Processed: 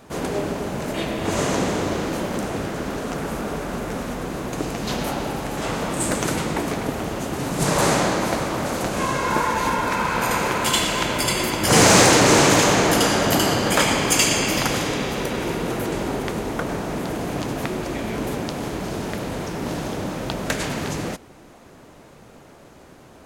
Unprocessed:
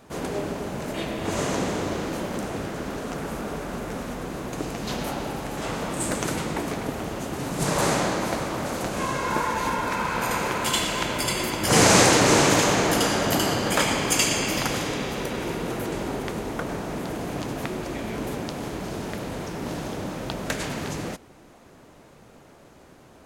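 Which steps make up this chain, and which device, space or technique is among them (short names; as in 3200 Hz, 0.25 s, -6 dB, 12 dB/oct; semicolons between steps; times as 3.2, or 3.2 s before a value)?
parallel distortion (in parallel at -4.5 dB: hard clip -15.5 dBFS, distortion -14 dB)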